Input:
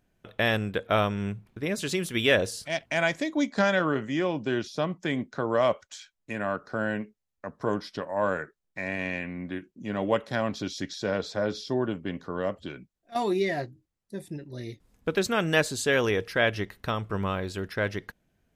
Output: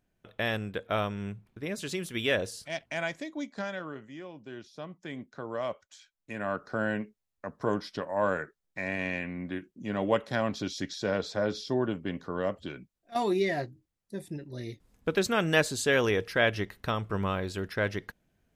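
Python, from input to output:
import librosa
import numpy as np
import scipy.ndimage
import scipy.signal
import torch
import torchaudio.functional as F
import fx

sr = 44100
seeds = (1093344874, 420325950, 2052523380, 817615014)

y = fx.gain(x, sr, db=fx.line((2.79, -5.5), (4.3, -17.0), (5.28, -10.0), (5.97, -10.0), (6.6, -1.0)))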